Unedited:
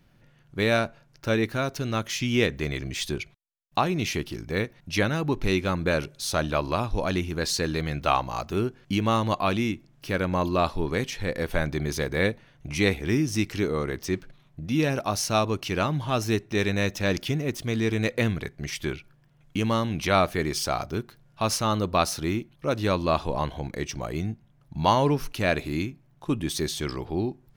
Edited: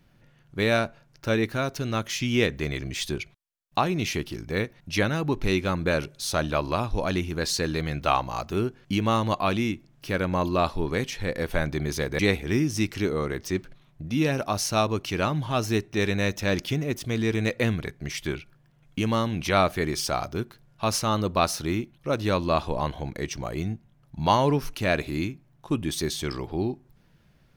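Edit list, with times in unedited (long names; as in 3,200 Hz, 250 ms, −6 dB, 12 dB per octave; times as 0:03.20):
0:12.19–0:12.77: remove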